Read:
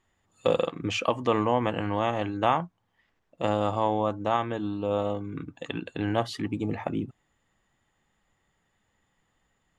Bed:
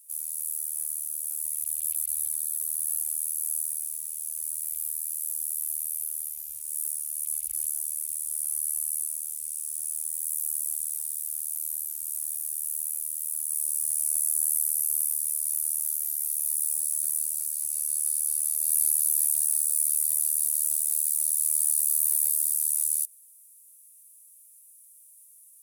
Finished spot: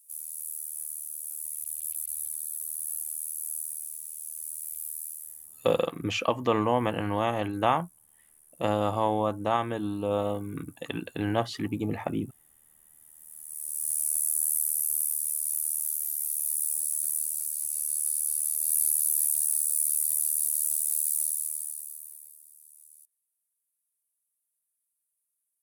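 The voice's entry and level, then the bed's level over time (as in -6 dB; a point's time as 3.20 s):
5.20 s, -0.5 dB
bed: 5.05 s -5 dB
5.88 s -29 dB
12.79 s -29 dB
13.90 s -1.5 dB
21.21 s -1.5 dB
22.42 s -28 dB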